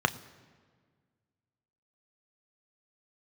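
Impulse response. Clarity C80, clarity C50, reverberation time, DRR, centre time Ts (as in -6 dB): 19.0 dB, 18.0 dB, 1.7 s, 9.5 dB, 5 ms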